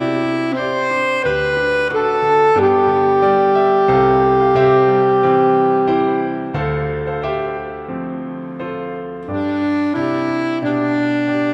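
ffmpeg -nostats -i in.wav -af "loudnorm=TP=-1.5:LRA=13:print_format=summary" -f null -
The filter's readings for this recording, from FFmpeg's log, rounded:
Input Integrated:    -16.8 LUFS
Input True Peak:      -1.9 dBTP
Input LRA:             8.7 LU
Input Threshold:     -26.9 LUFS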